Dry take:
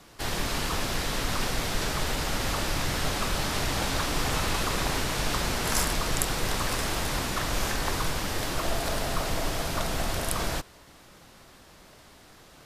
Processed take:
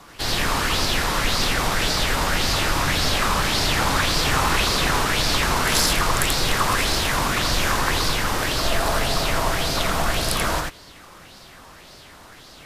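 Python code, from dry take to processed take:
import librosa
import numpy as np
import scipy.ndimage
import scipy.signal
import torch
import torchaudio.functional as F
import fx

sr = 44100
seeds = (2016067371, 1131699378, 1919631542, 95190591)

p1 = 10.0 ** (-17.5 / 20.0) * np.tanh(x / 10.0 ** (-17.5 / 20.0))
p2 = x + F.gain(torch.from_numpy(p1), -7.5).numpy()
p3 = p2 + 10.0 ** (-3.0 / 20.0) * np.pad(p2, (int(85 * sr / 1000.0), 0))[:len(p2)]
p4 = fx.bell_lfo(p3, sr, hz=1.8, low_hz=980.0, high_hz=4800.0, db=9)
y = F.gain(torch.from_numpy(p4), 1.0).numpy()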